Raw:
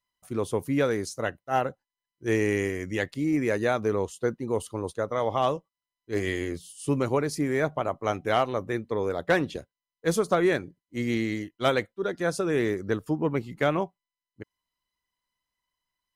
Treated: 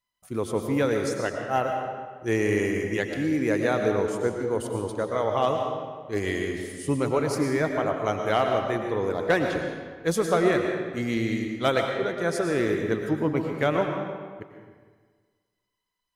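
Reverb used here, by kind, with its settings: digital reverb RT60 1.6 s, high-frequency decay 0.75×, pre-delay 70 ms, DRR 3 dB

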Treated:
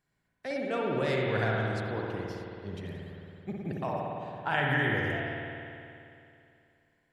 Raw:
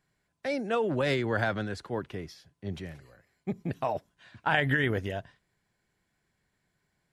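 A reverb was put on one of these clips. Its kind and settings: spring tank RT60 2.7 s, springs 54 ms, chirp 55 ms, DRR -2.5 dB; gain -5 dB

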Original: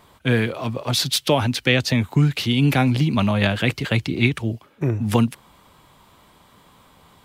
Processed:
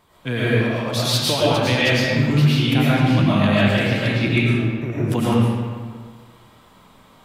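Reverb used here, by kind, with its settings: digital reverb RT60 1.7 s, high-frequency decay 0.65×, pre-delay 70 ms, DRR -8.5 dB; gain -6.5 dB

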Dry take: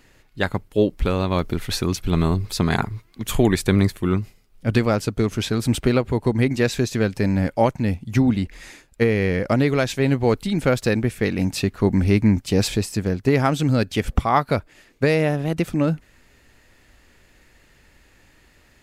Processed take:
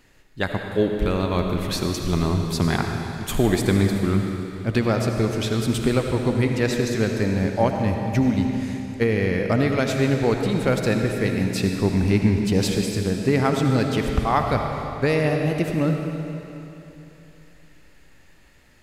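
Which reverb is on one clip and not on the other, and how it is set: digital reverb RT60 3.1 s, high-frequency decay 0.95×, pre-delay 35 ms, DRR 3 dB; gain -2.5 dB

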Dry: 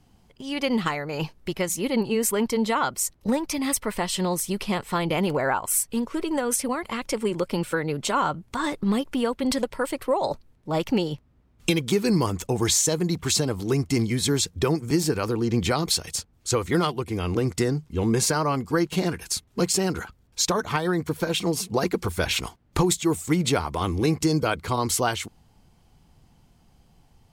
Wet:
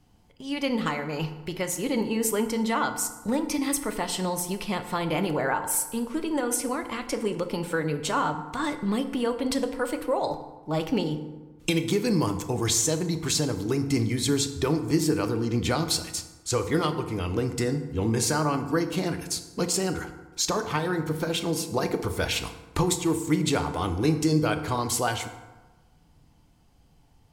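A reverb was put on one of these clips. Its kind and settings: FDN reverb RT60 1.2 s, low-frequency decay 1.05×, high-frequency decay 0.55×, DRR 7 dB; gain -3 dB

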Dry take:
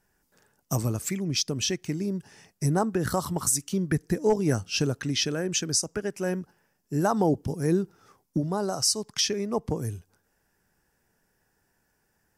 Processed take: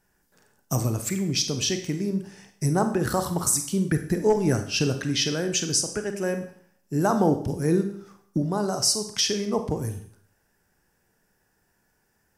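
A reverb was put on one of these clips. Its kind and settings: Schroeder reverb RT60 0.58 s, combs from 31 ms, DRR 7 dB; gain +1.5 dB

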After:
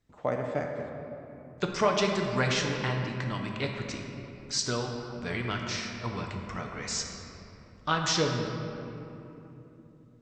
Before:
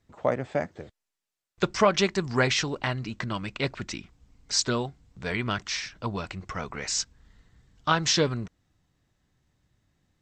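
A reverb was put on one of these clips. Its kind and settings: shoebox room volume 160 m³, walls hard, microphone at 0.37 m; gain -5 dB

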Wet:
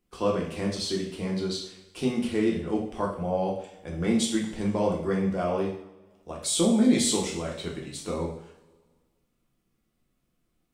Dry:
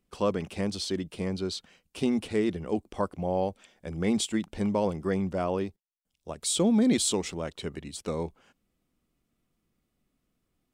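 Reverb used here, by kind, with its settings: two-slope reverb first 0.56 s, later 1.7 s, from -19 dB, DRR -2.5 dB; gain -2.5 dB

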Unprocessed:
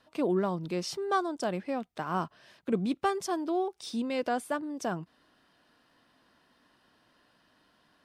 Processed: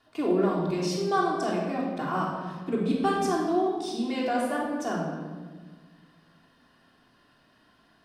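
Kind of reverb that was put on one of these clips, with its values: shoebox room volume 1400 m³, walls mixed, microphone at 3.3 m; gain -2.5 dB

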